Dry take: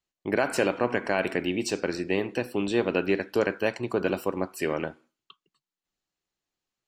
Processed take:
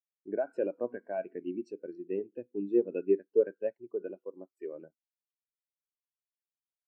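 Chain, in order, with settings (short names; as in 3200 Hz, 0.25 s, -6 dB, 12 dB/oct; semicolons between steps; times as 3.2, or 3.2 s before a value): 3.73–4.74 bell 120 Hz -4 dB 2.4 oct; spectral expander 2.5:1; gain -3.5 dB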